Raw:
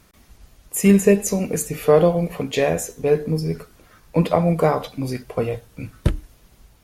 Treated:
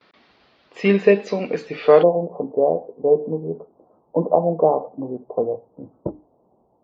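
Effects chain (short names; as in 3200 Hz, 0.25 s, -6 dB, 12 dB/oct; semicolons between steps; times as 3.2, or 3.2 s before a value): steep low-pass 4600 Hz 48 dB/oct, from 2.02 s 920 Hz; gate with hold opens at -48 dBFS; HPF 320 Hz 12 dB/oct; gain +3 dB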